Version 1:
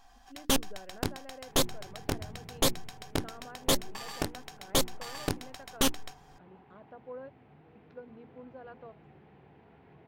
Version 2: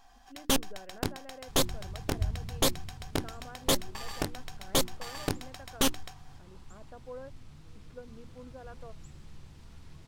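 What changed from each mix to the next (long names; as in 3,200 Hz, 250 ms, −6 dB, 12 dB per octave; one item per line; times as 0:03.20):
second sound: remove loudspeaker in its box 180–2,400 Hz, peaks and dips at 420 Hz +9 dB, 750 Hz +10 dB, 1,200 Hz −5 dB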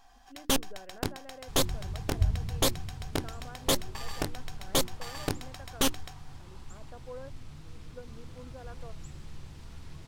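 second sound +5.0 dB
master: add parametric band 210 Hz −2.5 dB 0.42 octaves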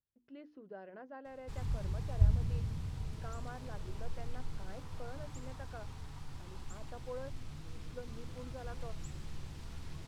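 first sound: muted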